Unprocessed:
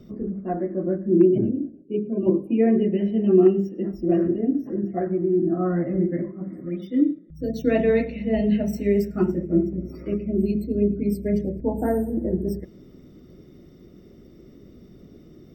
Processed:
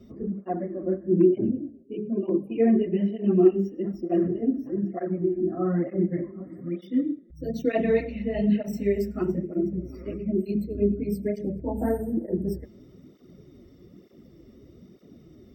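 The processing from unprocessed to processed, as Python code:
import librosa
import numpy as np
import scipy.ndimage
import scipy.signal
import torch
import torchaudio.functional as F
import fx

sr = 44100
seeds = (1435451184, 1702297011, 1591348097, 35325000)

y = fx.notch(x, sr, hz=1500.0, q=14.0)
y = fx.flanger_cancel(y, sr, hz=1.1, depth_ms=7.0)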